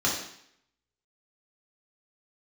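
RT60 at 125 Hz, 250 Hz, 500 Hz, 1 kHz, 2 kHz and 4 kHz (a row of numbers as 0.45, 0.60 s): 0.65, 0.70, 0.65, 0.70, 0.70, 0.70 s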